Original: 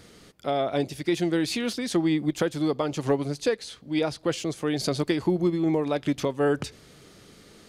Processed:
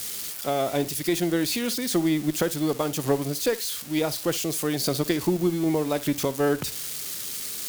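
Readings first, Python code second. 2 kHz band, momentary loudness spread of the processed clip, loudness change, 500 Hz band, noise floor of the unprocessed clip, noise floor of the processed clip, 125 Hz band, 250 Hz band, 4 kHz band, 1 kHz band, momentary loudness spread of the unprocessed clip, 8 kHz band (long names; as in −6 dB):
+1.0 dB, 6 LU, +1.0 dB, +0.5 dB, −53 dBFS, −36 dBFS, +0.5 dB, +0.5 dB, +3.5 dB, +0.5 dB, 5 LU, +10.0 dB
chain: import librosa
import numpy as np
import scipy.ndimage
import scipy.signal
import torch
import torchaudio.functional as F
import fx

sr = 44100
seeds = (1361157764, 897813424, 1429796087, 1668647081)

y = x + 0.5 * 10.0 ** (-24.0 / 20.0) * np.diff(np.sign(x), prepend=np.sign(x[:1]))
y = fx.cheby_harmonics(y, sr, harmonics=(2,), levels_db=(-20,), full_scale_db=-11.5)
y = fx.room_flutter(y, sr, wall_m=10.1, rt60_s=0.2)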